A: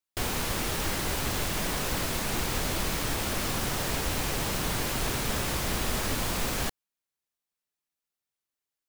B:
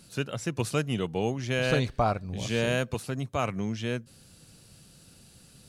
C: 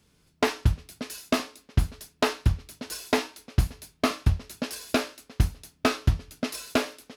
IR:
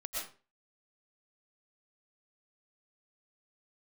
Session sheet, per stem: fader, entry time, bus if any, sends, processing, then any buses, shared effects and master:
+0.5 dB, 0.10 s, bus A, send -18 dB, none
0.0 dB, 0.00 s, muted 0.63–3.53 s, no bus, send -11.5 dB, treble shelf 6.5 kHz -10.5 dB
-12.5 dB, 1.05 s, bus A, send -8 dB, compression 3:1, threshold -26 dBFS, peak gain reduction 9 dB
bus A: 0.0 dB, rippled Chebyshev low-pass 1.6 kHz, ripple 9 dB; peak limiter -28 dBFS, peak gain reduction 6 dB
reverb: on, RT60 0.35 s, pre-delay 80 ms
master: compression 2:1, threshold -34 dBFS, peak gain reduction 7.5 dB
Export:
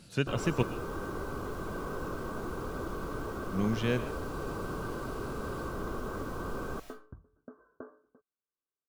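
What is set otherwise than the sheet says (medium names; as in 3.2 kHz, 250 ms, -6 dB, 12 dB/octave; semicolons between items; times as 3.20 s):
stem A: send -18 dB -> -24 dB; stem C: send off; master: missing compression 2:1, threshold -34 dBFS, peak gain reduction 7.5 dB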